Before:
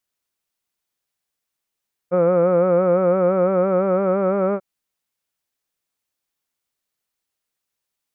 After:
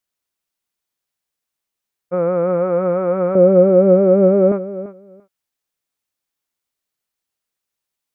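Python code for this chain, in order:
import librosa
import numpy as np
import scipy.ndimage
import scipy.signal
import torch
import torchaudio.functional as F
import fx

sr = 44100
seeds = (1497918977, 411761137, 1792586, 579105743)

p1 = fx.graphic_eq(x, sr, hz=(125, 250, 500, 1000, 2000), db=(9, 7, 11, -10, -4), at=(3.35, 4.52))
p2 = p1 + fx.echo_feedback(p1, sr, ms=341, feedback_pct=15, wet_db=-14.0, dry=0)
y = F.gain(torch.from_numpy(p2), -1.0).numpy()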